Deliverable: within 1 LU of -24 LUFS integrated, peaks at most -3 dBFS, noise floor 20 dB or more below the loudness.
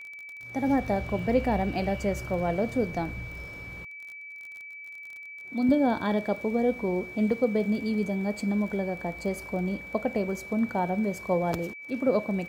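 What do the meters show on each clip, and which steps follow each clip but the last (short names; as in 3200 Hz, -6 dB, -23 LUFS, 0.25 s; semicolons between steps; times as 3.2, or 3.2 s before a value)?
ticks 29/s; steady tone 2300 Hz; tone level -40 dBFS; loudness -28.0 LUFS; peak -12.0 dBFS; loudness target -24.0 LUFS
-> de-click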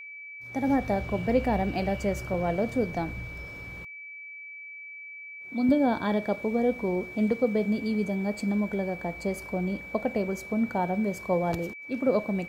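ticks 0.080/s; steady tone 2300 Hz; tone level -40 dBFS
-> notch 2300 Hz, Q 30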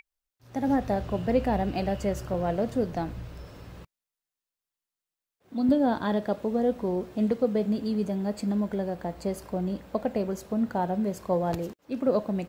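steady tone none; loudness -28.5 LUFS; peak -12.5 dBFS; loudness target -24.0 LUFS
-> gain +4.5 dB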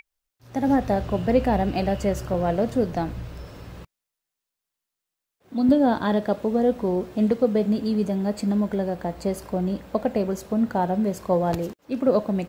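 loudness -24.0 LUFS; peak -8.0 dBFS; noise floor -86 dBFS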